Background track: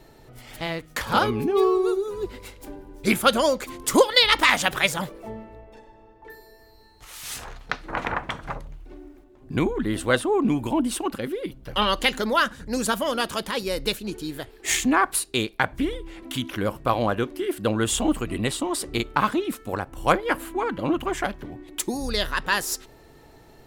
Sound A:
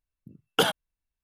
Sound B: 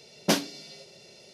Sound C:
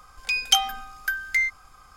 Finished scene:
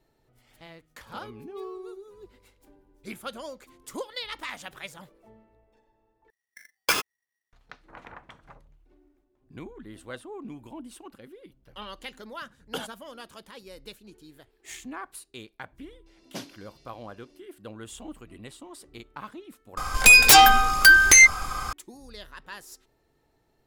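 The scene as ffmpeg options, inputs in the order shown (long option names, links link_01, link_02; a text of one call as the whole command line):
ffmpeg -i bed.wav -i cue0.wav -i cue1.wav -i cue2.wav -filter_complex "[1:a]asplit=2[link_01][link_02];[0:a]volume=-18.5dB[link_03];[link_01]aeval=exprs='val(0)*sgn(sin(2*PI*1900*n/s))':channel_layout=same[link_04];[3:a]aeval=exprs='0.631*sin(PI/2*10*val(0)/0.631)':channel_layout=same[link_05];[link_03]asplit=2[link_06][link_07];[link_06]atrim=end=6.304[link_08];[link_04]atrim=end=1.23,asetpts=PTS-STARTPTS,volume=-1.5dB[link_09];[link_07]atrim=start=7.526[link_10];[link_02]atrim=end=1.23,asetpts=PTS-STARTPTS,volume=-12dB,afade=type=in:duration=0.004:curve=hsin,afade=type=out:start_time=1.226:duration=0.004:curve=hsin,adelay=12150[link_11];[2:a]atrim=end=1.33,asetpts=PTS-STARTPTS,volume=-15dB,afade=type=in:duration=0.004:curve=hsin,afade=type=out:start_time=1.326:duration=0.004:curve=hsin,adelay=16060[link_12];[link_05]atrim=end=1.96,asetpts=PTS-STARTPTS,volume=-4dB,afade=type=in:duration=0.004:curve=hsin,afade=type=out:start_time=1.956:duration=0.004:curve=hsin,adelay=19770[link_13];[link_08][link_09]acrossfade=duration=0.004:curve1=hsin:curve2=hsin[link_14];[link_14][link_10]acrossfade=duration=0.004:curve1=hsin:curve2=hsin[link_15];[link_15][link_11][link_12][link_13]amix=inputs=4:normalize=0" out.wav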